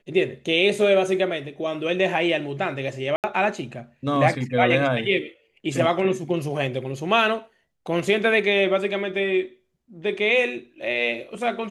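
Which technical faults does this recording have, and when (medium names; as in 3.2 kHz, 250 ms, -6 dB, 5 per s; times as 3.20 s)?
3.16–3.24 s: dropout 78 ms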